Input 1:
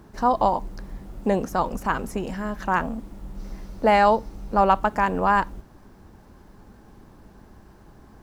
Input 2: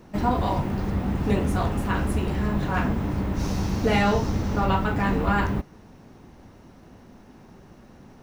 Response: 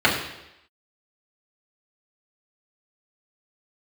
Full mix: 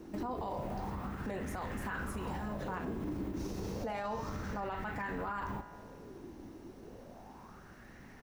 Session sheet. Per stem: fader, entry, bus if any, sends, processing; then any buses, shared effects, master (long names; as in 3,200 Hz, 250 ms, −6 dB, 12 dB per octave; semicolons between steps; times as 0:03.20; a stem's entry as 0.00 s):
−8.0 dB, 0.00 s, no send, no processing
−2.0 dB, 0.5 ms, no send, high-shelf EQ 5,800 Hz +7.5 dB; downward compressor, threshold −29 dBFS, peak gain reduction 12 dB; auto-filter bell 0.31 Hz 320–1,900 Hz +14 dB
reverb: not used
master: tuned comb filter 55 Hz, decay 1.8 s, harmonics all, mix 50%; brickwall limiter −30 dBFS, peak gain reduction 12.5 dB